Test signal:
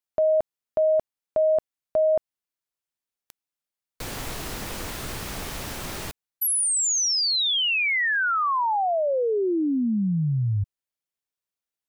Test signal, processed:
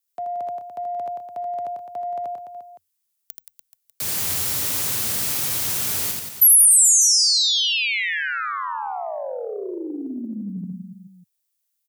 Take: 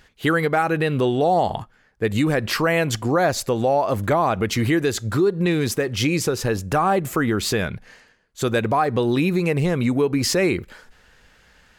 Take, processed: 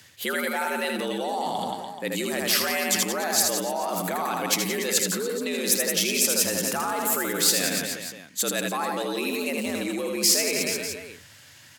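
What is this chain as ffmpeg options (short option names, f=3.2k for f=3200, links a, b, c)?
-af "aecho=1:1:80|176|291.2|429.4|595.3:0.631|0.398|0.251|0.158|0.1,areverse,acompressor=threshold=-24dB:ratio=6:attack=16:release=43:knee=1:detection=rms,areverse,afreqshift=78,crystalizer=i=5.5:c=0,volume=-5dB"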